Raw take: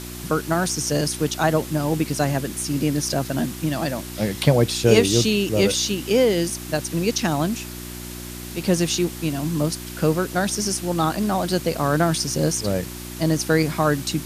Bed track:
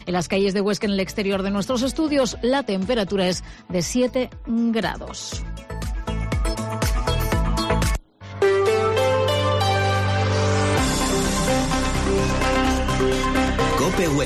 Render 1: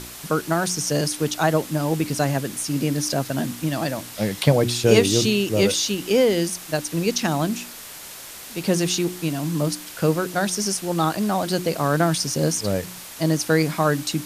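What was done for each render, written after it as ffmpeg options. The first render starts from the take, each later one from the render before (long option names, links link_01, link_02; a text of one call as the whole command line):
ffmpeg -i in.wav -af "bandreject=frequency=60:width_type=h:width=4,bandreject=frequency=120:width_type=h:width=4,bandreject=frequency=180:width_type=h:width=4,bandreject=frequency=240:width_type=h:width=4,bandreject=frequency=300:width_type=h:width=4,bandreject=frequency=360:width_type=h:width=4" out.wav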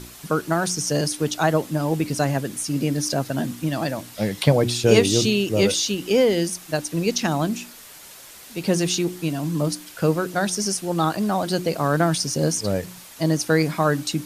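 ffmpeg -i in.wav -af "afftdn=noise_reduction=6:noise_floor=-39" out.wav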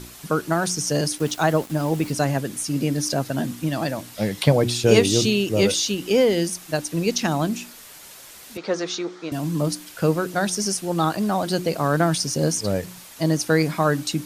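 ffmpeg -i in.wav -filter_complex "[0:a]asettb=1/sr,asplit=3[link_01][link_02][link_03];[link_01]atrim=end=1.184[link_04];[link_02]atrim=start=1.18:end=2.12,asetpts=PTS-STARTPTS,afade=type=in:duration=0.004:curve=qsin,afade=type=out:start_time=0.936:duration=0.004:curve=qsin,aeval=exprs='val(0)*gte(abs(val(0)),0.0158)':channel_layout=same[link_05];[link_03]atrim=start=2.116[link_06];[link_04][link_05]acrossfade=duration=0.004:curve1=hsin:curve2=qsin[link_07];[link_07][link_06]acrossfade=duration=0.004:curve1=qsin:curve2=hsin,asettb=1/sr,asplit=3[link_08][link_09][link_10];[link_08]atrim=end=8.574[link_11];[link_09]atrim=start=8.57:end=9.32,asetpts=PTS-STARTPTS,afade=type=in:duration=0.004:curve=qsin,afade=type=out:start_time=0.746:duration=0.004:curve=qsin,highpass=410,equalizer=frequency=490:width_type=q:width=4:gain=3,equalizer=frequency=1300:width_type=q:width=4:gain=8,equalizer=frequency=2800:width_type=q:width=4:gain=-9,equalizer=frequency=4700:width_type=q:width=4:gain=-4,lowpass=frequency=5400:width=0.5412,lowpass=frequency=5400:width=1.3066[link_12];[link_10]atrim=start=9.316[link_13];[link_11][link_12]acrossfade=duration=0.004:curve1=hsin:curve2=qsin[link_14];[link_14][link_13]acrossfade=duration=0.004:curve1=qsin:curve2=hsin" out.wav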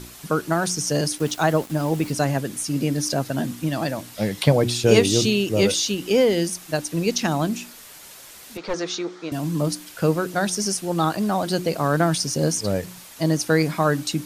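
ffmpeg -i in.wav -filter_complex "[0:a]asettb=1/sr,asplit=3[link_01][link_02][link_03];[link_01]atrim=end=7.614[link_04];[link_02]atrim=start=7.61:end=8.74,asetpts=PTS-STARTPTS,afade=type=in:duration=0.004:curve=qsin,afade=type=out:start_time=1.126:duration=0.004:curve=qsin,aeval=exprs='clip(val(0),-1,0.0355)':channel_layout=same[link_05];[link_03]atrim=start=8.736[link_06];[link_04][link_05]acrossfade=duration=0.004:curve1=hsin:curve2=qsin[link_07];[link_07][link_06]acrossfade=duration=0.004:curve1=qsin:curve2=hsin" out.wav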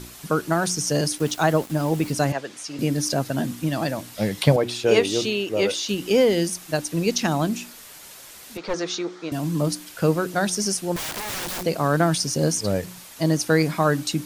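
ffmpeg -i in.wav -filter_complex "[0:a]asettb=1/sr,asplit=3[link_01][link_02][link_03];[link_01]atrim=end=2.324[link_04];[link_02]atrim=start=2.32:end=2.79,asetpts=PTS-STARTPTS,afade=type=in:duration=0.004:curve=qsin,afade=type=out:start_time=0.466:duration=0.004:curve=qsin,acrossover=split=400 6800:gain=0.141 1 0.0891[link_05][link_06][link_07];[link_05][link_06][link_07]amix=inputs=3:normalize=0[link_08];[link_03]atrim=start=2.786[link_09];[link_04][link_08]acrossfade=duration=0.004:curve1=hsin:curve2=qsin[link_10];[link_10][link_09]acrossfade=duration=0.004:curve1=qsin:curve2=hsin,asettb=1/sr,asplit=3[link_11][link_12][link_13];[link_11]atrim=end=4.564[link_14];[link_12]atrim=start=4.56:end=5.89,asetpts=PTS-STARTPTS,afade=type=in:duration=0.004:curve=qsin,afade=type=out:start_time=1.326:duration=0.004:curve=qsin,bass=frequency=250:gain=-13,treble=frequency=4000:gain=-8[link_15];[link_13]atrim=start=5.886[link_16];[link_14][link_15]acrossfade=duration=0.004:curve1=hsin:curve2=qsin[link_17];[link_17][link_16]acrossfade=duration=0.004:curve1=qsin:curve2=hsin,asettb=1/sr,asplit=3[link_18][link_19][link_20];[link_18]atrim=end=10.964[link_21];[link_19]atrim=start=10.96:end=11.65,asetpts=PTS-STARTPTS,afade=type=in:duration=0.004:curve=qsin,afade=type=out:start_time=0.686:duration=0.004:curve=qsin,aeval=exprs='(mod(17.8*val(0)+1,2)-1)/17.8':channel_layout=same[link_22];[link_20]atrim=start=11.646[link_23];[link_21][link_22]acrossfade=duration=0.004:curve1=hsin:curve2=qsin[link_24];[link_24][link_23]acrossfade=duration=0.004:curve1=qsin:curve2=hsin" out.wav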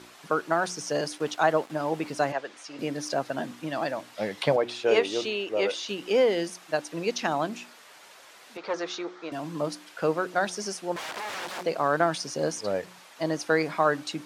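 ffmpeg -i in.wav -af "highpass=650,aemphasis=mode=reproduction:type=riaa" out.wav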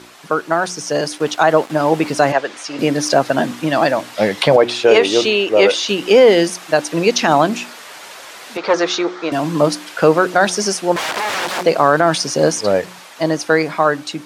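ffmpeg -i in.wav -af "dynaudnorm=framelen=310:gausssize=9:maxgain=8.5dB,alimiter=level_in=8dB:limit=-1dB:release=50:level=0:latency=1" out.wav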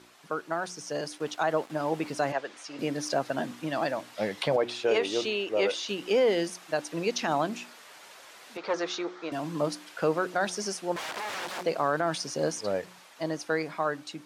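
ffmpeg -i in.wav -af "volume=-14.5dB" out.wav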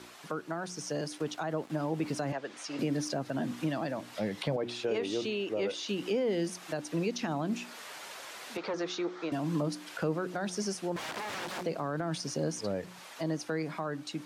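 ffmpeg -i in.wav -filter_complex "[0:a]asplit=2[link_01][link_02];[link_02]alimiter=level_in=1.5dB:limit=-24dB:level=0:latency=1:release=67,volume=-1.5dB,volume=-1dB[link_03];[link_01][link_03]amix=inputs=2:normalize=0,acrossover=split=300[link_04][link_05];[link_05]acompressor=threshold=-40dB:ratio=2.5[link_06];[link_04][link_06]amix=inputs=2:normalize=0" out.wav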